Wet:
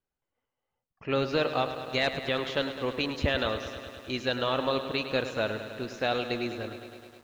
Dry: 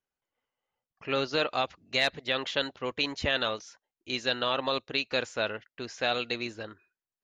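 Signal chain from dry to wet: tilt -2 dB/oct; lo-fi delay 0.104 s, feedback 80%, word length 9-bit, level -11 dB

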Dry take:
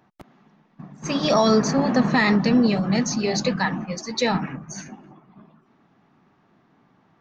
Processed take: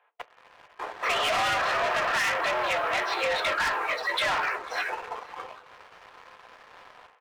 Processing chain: dynamic EQ 1400 Hz, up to +5 dB, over -38 dBFS, Q 1.2; overloaded stage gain 22.5 dB; tilt +3.5 dB/oct; AGC gain up to 12 dB; on a send at -7 dB: reverb RT60 0.25 s, pre-delay 3 ms; on the sum: mistuned SSB +120 Hz 410–3300 Hz; soft clip -17.5 dBFS, distortion -11 dB; formant shift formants -2 st; sample leveller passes 2; compressor 4:1, threshold -26 dBFS, peak gain reduction 9.5 dB; echo 0.496 s -23 dB

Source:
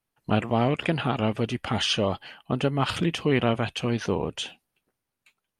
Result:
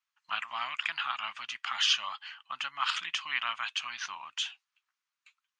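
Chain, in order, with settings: elliptic band-pass 1100–7000 Hz, stop band 40 dB

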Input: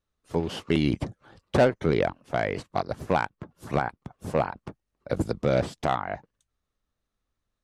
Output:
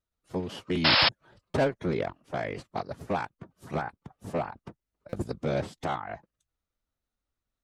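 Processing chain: formant-preserving pitch shift +1.5 st; painted sound noise, 0.84–1.09, 490–5400 Hz -16 dBFS; stuck buffer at 1.5/5.09, samples 256, times 6; gain -5 dB

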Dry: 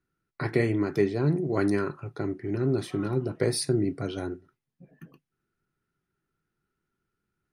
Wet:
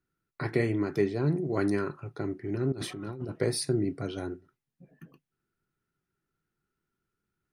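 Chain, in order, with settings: 2.72–3.3 negative-ratio compressor -35 dBFS, ratio -1; gain -2.5 dB

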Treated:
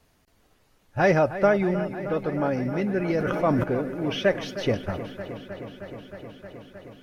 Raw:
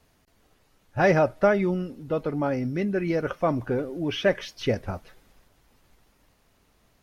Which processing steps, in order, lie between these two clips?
dark delay 0.312 s, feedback 82%, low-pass 3400 Hz, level -13 dB; 3.18–3.64 sustainer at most 21 dB/s

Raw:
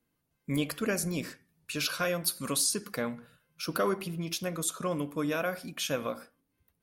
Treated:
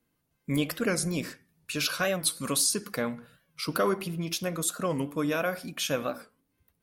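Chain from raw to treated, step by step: record warp 45 rpm, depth 160 cents; gain +2.5 dB

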